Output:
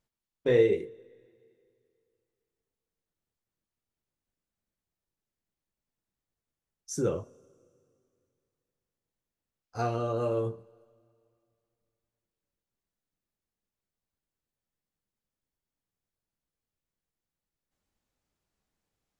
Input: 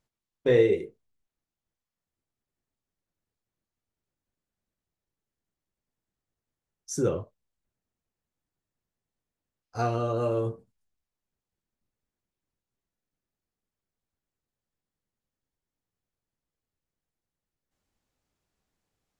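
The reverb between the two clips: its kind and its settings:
coupled-rooms reverb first 0.23 s, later 2.5 s, from −18 dB, DRR 16.5 dB
level −2.5 dB

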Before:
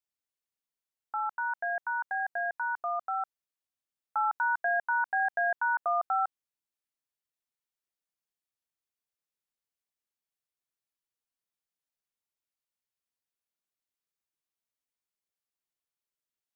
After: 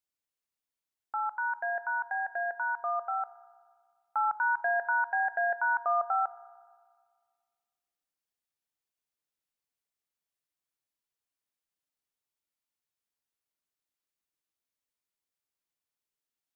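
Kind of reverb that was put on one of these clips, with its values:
feedback delay network reverb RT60 1.8 s, low-frequency decay 1×, high-frequency decay 0.5×, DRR 13.5 dB

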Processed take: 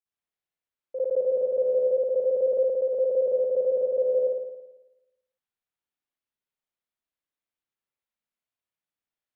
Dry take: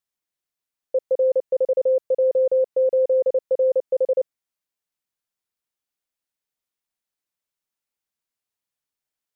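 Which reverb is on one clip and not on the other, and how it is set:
spring reverb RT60 1 s, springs 55 ms, chirp 25 ms, DRR −9 dB
level −12.5 dB

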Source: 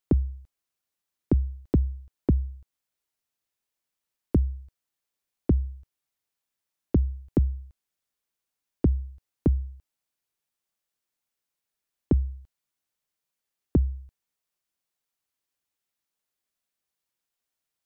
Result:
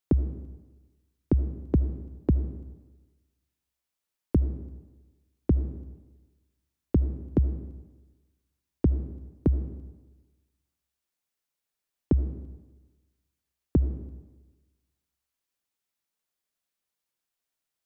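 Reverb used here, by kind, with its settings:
comb and all-pass reverb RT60 1.2 s, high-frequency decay 0.7×, pre-delay 35 ms, DRR 11.5 dB
level −1 dB

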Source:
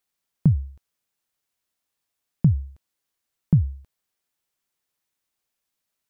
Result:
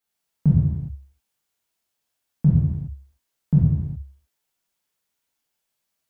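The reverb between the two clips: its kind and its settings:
reverb whose tail is shaped and stops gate 440 ms falling, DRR −8 dB
level −6 dB

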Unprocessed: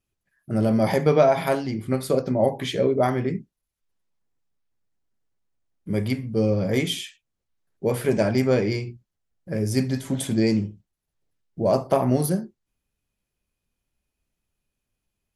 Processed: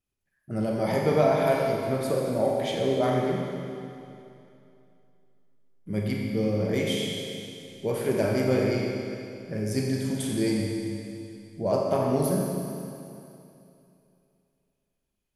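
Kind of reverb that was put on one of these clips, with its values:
four-comb reverb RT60 2.7 s, combs from 30 ms, DRR −1 dB
level −6 dB

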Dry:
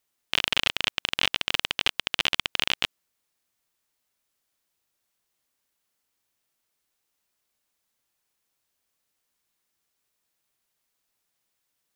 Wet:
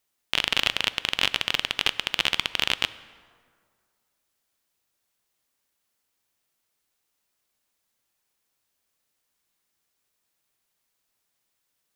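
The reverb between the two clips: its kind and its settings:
dense smooth reverb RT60 2 s, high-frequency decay 0.55×, DRR 15 dB
level +1 dB

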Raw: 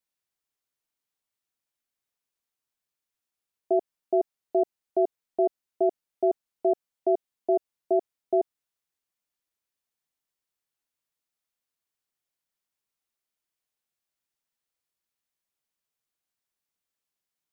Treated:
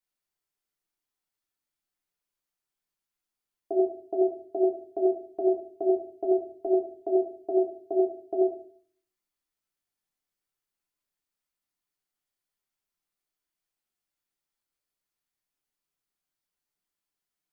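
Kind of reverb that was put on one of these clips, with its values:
rectangular room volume 47 cubic metres, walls mixed, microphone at 0.8 metres
level −5 dB

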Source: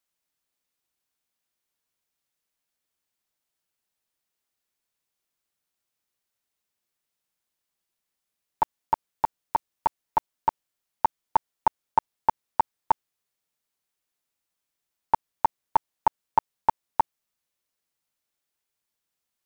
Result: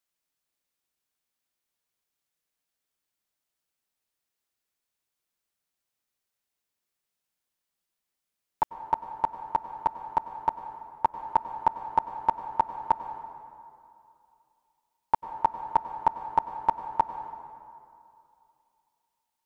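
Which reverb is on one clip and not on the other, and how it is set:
dense smooth reverb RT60 2.6 s, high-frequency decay 0.6×, pre-delay 85 ms, DRR 9.5 dB
level −2 dB

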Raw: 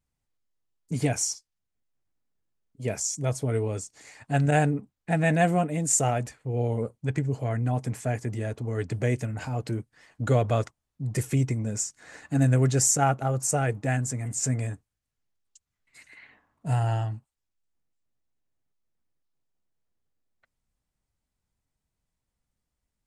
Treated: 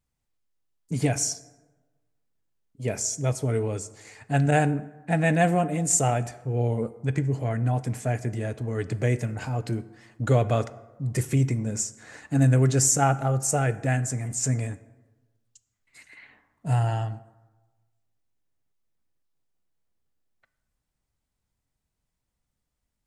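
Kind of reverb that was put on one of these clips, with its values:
dense smooth reverb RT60 1.2 s, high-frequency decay 0.5×, DRR 14 dB
level +1 dB

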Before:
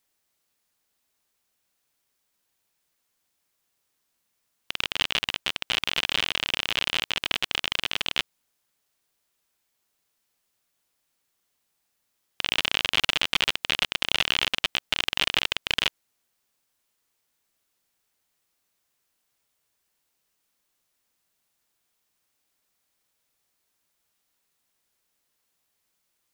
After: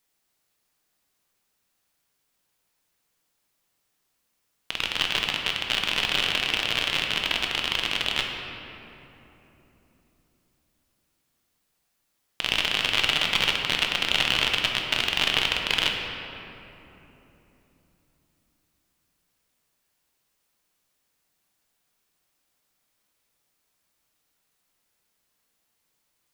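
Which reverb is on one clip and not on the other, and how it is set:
rectangular room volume 190 cubic metres, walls hard, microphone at 0.4 metres

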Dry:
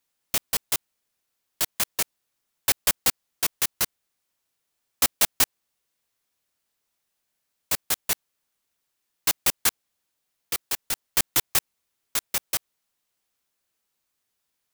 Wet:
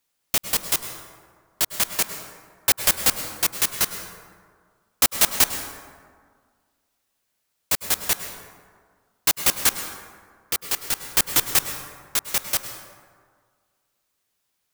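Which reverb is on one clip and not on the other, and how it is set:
dense smooth reverb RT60 1.8 s, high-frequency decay 0.45×, pre-delay 90 ms, DRR 7.5 dB
level +3 dB

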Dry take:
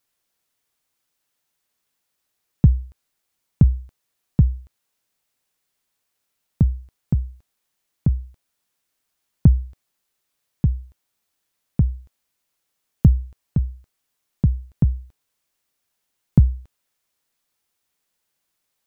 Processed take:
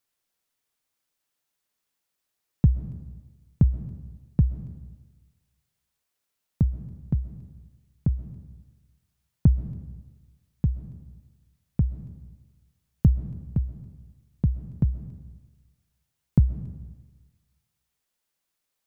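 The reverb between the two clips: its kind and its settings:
comb and all-pass reverb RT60 1.3 s, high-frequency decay 0.85×, pre-delay 90 ms, DRR 12 dB
level −5 dB

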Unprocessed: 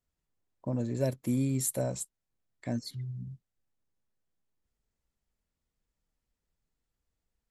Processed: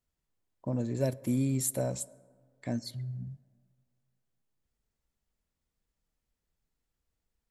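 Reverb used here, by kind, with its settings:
dense smooth reverb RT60 1.9 s, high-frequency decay 0.35×, DRR 19.5 dB

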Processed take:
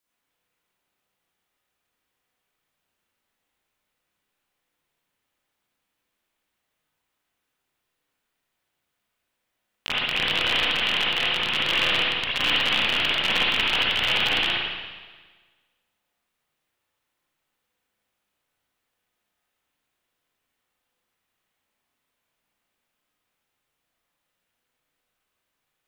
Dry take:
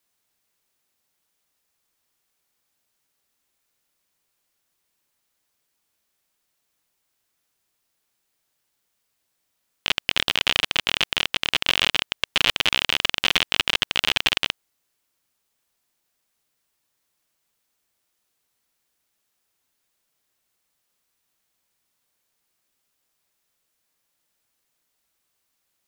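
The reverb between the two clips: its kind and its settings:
spring reverb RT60 1.4 s, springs 34/54/58 ms, chirp 60 ms, DRR −9 dB
level −8 dB

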